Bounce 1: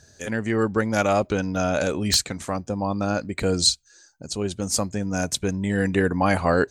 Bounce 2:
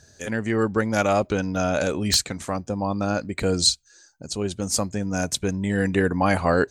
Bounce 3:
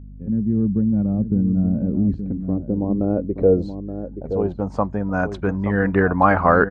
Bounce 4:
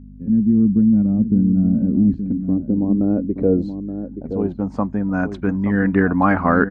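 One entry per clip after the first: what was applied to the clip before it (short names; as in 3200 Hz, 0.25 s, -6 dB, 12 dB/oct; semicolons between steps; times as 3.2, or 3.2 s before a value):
nothing audible
low-pass sweep 200 Hz -> 1300 Hz, 1.69–5.33; hum 50 Hz, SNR 18 dB; outdoor echo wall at 150 m, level -9 dB; gain +2.5 dB
graphic EQ 250/500/2000 Hz +11/-3/+4 dB; gain -3.5 dB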